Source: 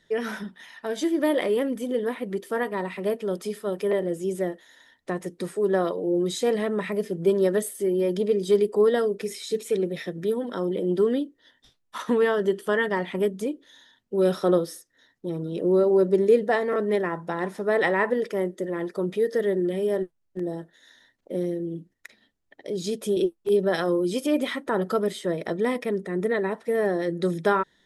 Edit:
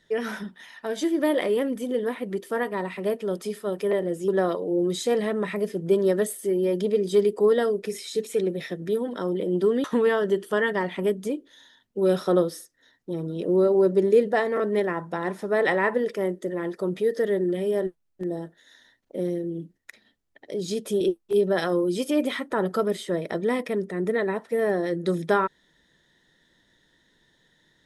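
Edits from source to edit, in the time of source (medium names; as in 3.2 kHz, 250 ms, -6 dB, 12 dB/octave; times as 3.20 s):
4.28–5.64 s: delete
11.20–12.00 s: delete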